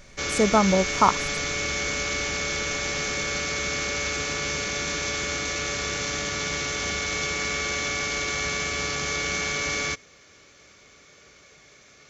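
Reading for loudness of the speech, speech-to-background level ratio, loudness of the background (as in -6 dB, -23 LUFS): -22.0 LUFS, 4.0 dB, -26.0 LUFS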